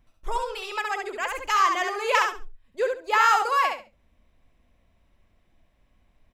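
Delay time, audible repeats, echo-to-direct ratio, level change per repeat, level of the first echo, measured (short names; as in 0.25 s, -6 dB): 69 ms, 3, -4.5 dB, -13.5 dB, -4.5 dB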